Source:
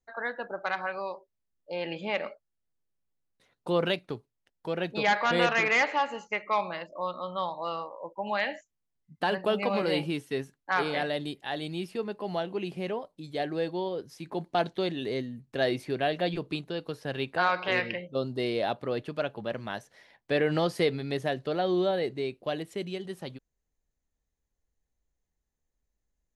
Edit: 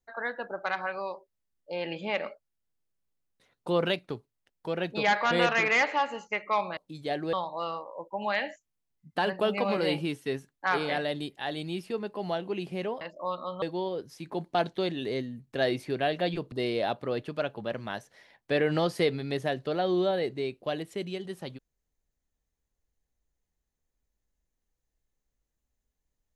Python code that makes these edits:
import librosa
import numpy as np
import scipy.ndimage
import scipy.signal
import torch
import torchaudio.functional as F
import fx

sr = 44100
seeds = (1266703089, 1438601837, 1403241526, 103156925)

y = fx.edit(x, sr, fx.swap(start_s=6.77, length_s=0.61, other_s=13.06, other_length_s=0.56),
    fx.cut(start_s=16.52, length_s=1.8), tone=tone)